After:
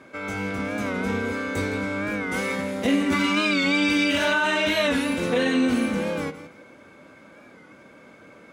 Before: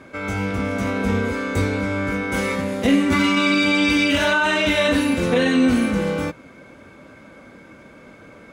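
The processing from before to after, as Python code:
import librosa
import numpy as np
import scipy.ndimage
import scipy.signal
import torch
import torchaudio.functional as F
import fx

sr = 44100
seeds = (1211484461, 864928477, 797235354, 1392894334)

p1 = fx.highpass(x, sr, hz=180.0, slope=6)
p2 = p1 + fx.echo_feedback(p1, sr, ms=164, feedback_pct=23, wet_db=-13.0, dry=0)
p3 = fx.record_warp(p2, sr, rpm=45.0, depth_cents=100.0)
y = p3 * librosa.db_to_amplitude(-3.5)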